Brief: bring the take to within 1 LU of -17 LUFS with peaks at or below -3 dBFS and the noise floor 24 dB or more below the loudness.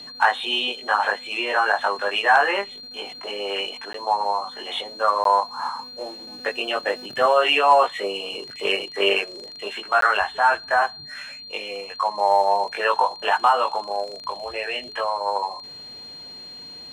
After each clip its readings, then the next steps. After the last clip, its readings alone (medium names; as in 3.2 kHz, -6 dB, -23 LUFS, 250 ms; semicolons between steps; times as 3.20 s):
dropouts 3; longest dropout 13 ms; steady tone 4.2 kHz; tone level -37 dBFS; loudness -22.0 LUFS; peak level -5.5 dBFS; loudness target -17.0 LUFS
-> interpolate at 3.93/5.24/10.01 s, 13 ms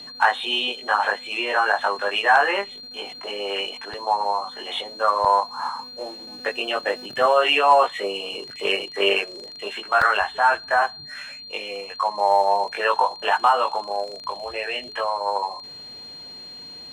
dropouts 0; steady tone 4.2 kHz; tone level -37 dBFS
-> band-stop 4.2 kHz, Q 30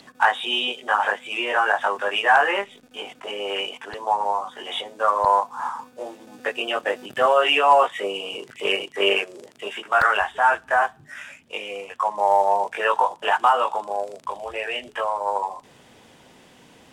steady tone not found; loudness -22.0 LUFS; peak level -5.5 dBFS; loudness target -17.0 LUFS
-> trim +5 dB; peak limiter -3 dBFS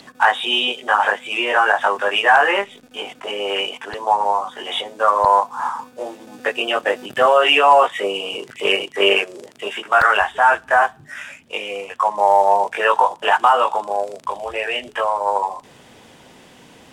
loudness -17.5 LUFS; peak level -3.0 dBFS; noise floor -48 dBFS